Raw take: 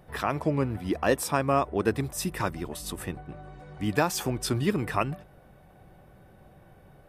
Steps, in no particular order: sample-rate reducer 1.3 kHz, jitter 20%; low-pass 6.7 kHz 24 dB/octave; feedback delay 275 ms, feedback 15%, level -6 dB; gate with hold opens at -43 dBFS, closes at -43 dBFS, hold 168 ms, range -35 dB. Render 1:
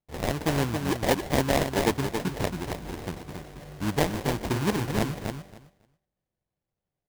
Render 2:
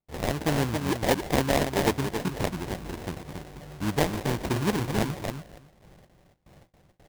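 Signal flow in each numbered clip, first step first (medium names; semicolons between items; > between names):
low-pass > sample-rate reducer > gate with hold > feedback delay; low-pass > gate with hold > feedback delay > sample-rate reducer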